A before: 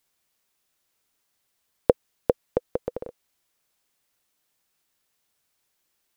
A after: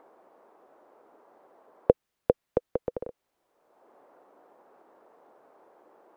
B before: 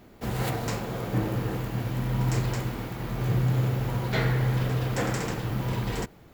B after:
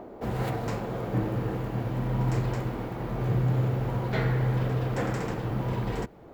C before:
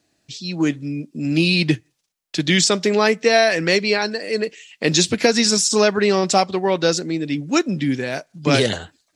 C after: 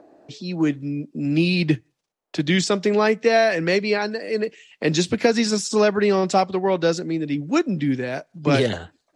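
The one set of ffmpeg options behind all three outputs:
-filter_complex "[0:a]highshelf=f=3.1k:g=-10.5,acrossover=split=320|970[a][b][c];[b]acompressor=mode=upward:threshold=-30dB:ratio=2.5[d];[a][d][c]amix=inputs=3:normalize=0,volume=-1dB"

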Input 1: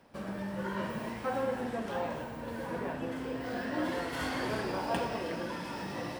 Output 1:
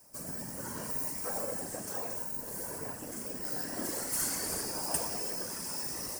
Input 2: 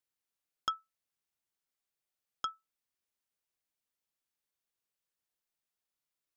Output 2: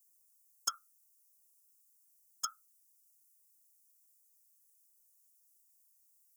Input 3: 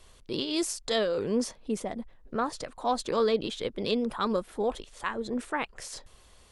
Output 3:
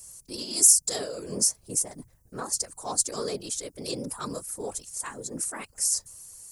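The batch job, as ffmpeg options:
-af "aexciter=amount=13.2:drive=8.1:freq=5.4k,afftfilt=real='hypot(re,im)*cos(2*PI*random(0))':imag='hypot(re,im)*sin(2*PI*random(1))':win_size=512:overlap=0.75,volume=-1dB"

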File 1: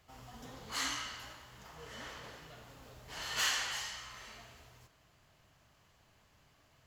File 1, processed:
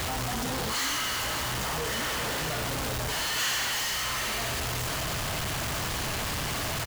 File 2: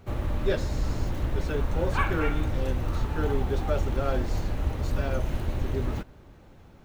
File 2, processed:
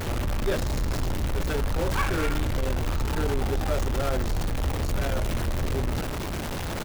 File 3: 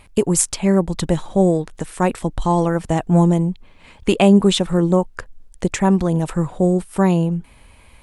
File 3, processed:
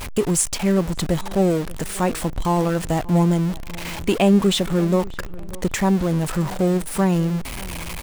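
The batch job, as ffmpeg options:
-filter_complex "[0:a]aeval=exprs='val(0)+0.5*0.0944*sgn(val(0))':c=same,asplit=2[a][b];[b]adelay=588,lowpass=f=2.3k:p=1,volume=-20dB,asplit=2[c][d];[d]adelay=588,lowpass=f=2.3k:p=1,volume=0.35,asplit=2[e][f];[f]adelay=588,lowpass=f=2.3k:p=1,volume=0.35[g];[a][c][e][g]amix=inputs=4:normalize=0,volume=-4.5dB"

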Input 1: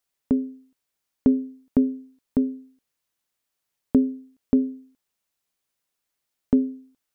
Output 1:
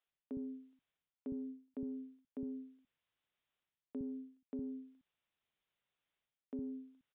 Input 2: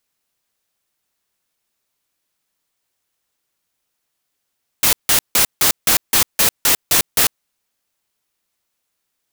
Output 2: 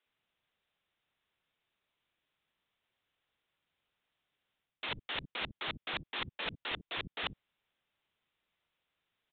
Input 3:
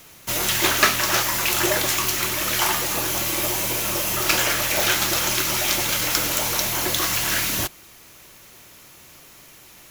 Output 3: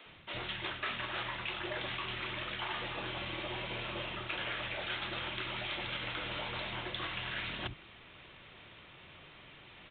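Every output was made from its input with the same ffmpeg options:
-filter_complex "[0:a]aresample=8000,aresample=44100,equalizer=f=810:w=0.34:g=-4.5,areverse,acompressor=threshold=-36dB:ratio=6,areverse,lowshelf=f=79:g=-5.5,acrossover=split=260[a][b];[a]adelay=60[c];[c][b]amix=inputs=2:normalize=0"

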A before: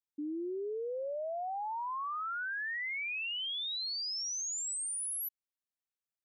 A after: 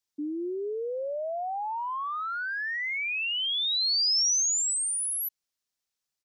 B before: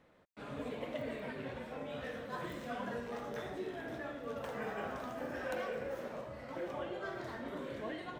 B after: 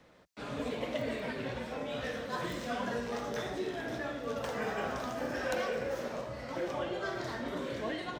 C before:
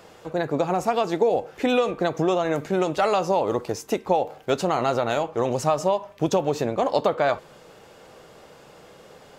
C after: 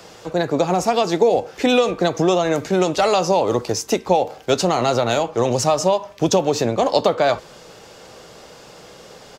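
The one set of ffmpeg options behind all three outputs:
-filter_complex "[0:a]equalizer=f=5.4k:t=o:w=1.2:g=8,acrossover=split=190|1100|1800[a][b][c][d];[a]asplit=2[e][f];[f]adelay=17,volume=-6dB[g];[e][g]amix=inputs=2:normalize=0[h];[c]asoftclip=type=tanh:threshold=-38dB[i];[h][b][i][d]amix=inputs=4:normalize=0,volume=5dB"

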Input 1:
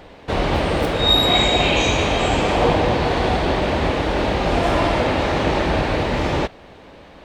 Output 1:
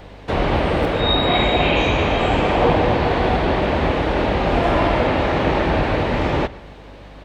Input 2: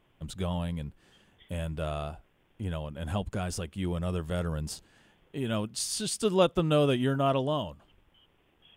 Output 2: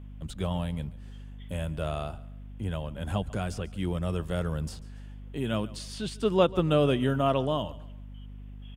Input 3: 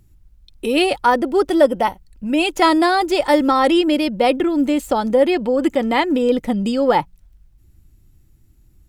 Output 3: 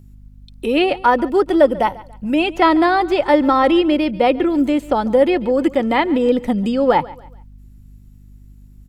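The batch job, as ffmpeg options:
-filter_complex "[0:a]acrossover=split=100|3600[a][b][c];[c]acompressor=threshold=-47dB:ratio=12[d];[a][b][d]amix=inputs=3:normalize=0,aeval=exprs='val(0)+0.00708*(sin(2*PI*50*n/s)+sin(2*PI*2*50*n/s)/2+sin(2*PI*3*50*n/s)/3+sin(2*PI*4*50*n/s)/4+sin(2*PI*5*50*n/s)/5)':c=same,aecho=1:1:142|284|426:0.1|0.035|0.0123,volume=1dB"

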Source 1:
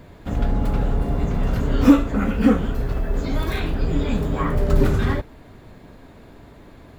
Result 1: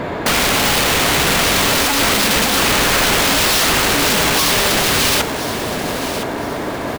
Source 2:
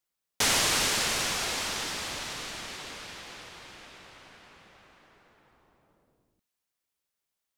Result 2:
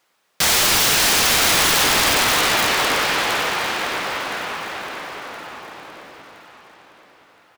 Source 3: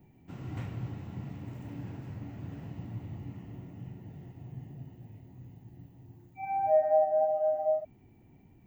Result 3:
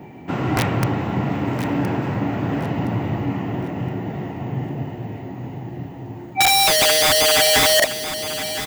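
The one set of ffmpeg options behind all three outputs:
-filter_complex "[0:a]asplit=2[a][b];[b]highpass=f=720:p=1,volume=37dB,asoftclip=type=tanh:threshold=-1dB[c];[a][c]amix=inputs=2:normalize=0,lowpass=f=1.3k:p=1,volume=-6dB,aeval=exprs='(mod(3.55*val(0)+1,2)-1)/3.55':c=same,aecho=1:1:1018|2036|3054|4072:0.282|0.0958|0.0326|0.0111"

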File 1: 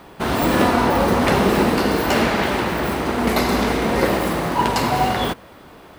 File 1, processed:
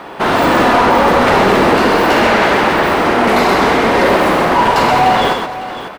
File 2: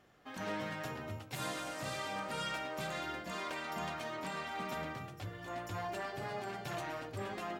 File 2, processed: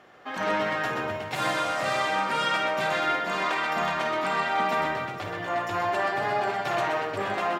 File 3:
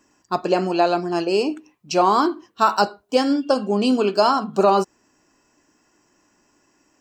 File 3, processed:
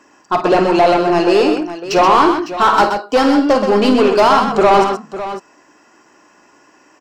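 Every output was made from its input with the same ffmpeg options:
-filter_complex "[0:a]asplit=2[a][b];[b]highpass=f=720:p=1,volume=23dB,asoftclip=type=tanh:threshold=-3dB[c];[a][c]amix=inputs=2:normalize=0,lowpass=f=1.7k:p=1,volume=-6dB,aecho=1:1:52|127|554:0.299|0.473|0.237"

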